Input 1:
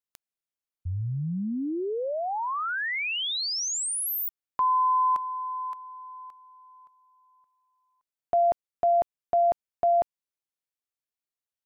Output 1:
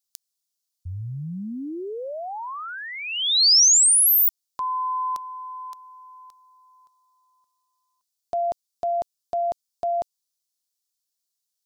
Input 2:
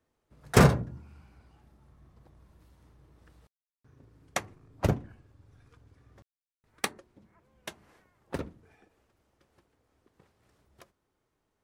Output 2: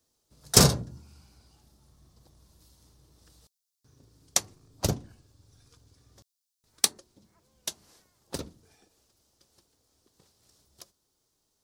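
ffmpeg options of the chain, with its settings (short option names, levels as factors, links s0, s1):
-af "highshelf=f=3200:t=q:w=1.5:g=14,volume=0.794"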